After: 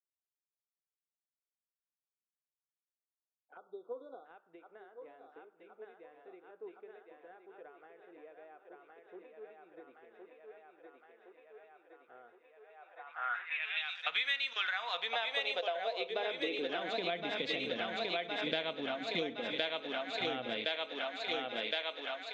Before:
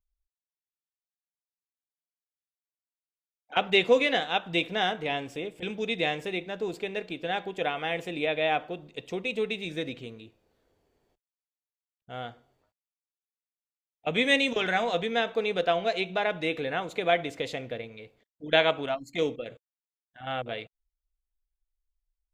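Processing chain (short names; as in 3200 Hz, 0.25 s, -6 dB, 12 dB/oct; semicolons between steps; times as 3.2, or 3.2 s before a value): spectral delete 3.57–4.25, 1500–3300 Hz; thinning echo 1.065 s, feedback 68%, high-pass 380 Hz, level -4 dB; high-pass sweep 1400 Hz -> 210 Hz, 14.55–17.17; compressor 8:1, threshold -37 dBFS, peak gain reduction 22 dB; low-pass sweep 380 Hz -> 4300 Hz, 12.66–13.89; gain +2.5 dB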